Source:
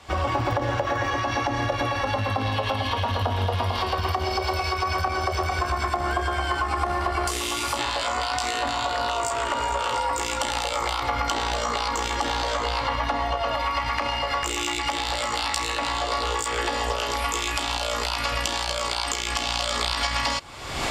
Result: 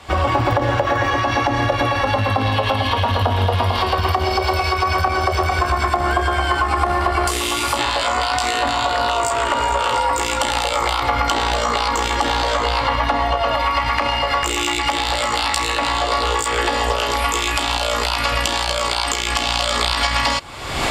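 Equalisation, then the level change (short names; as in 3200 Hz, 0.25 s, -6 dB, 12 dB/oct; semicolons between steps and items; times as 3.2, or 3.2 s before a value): bell 5900 Hz -4 dB 0.52 oct; +7.0 dB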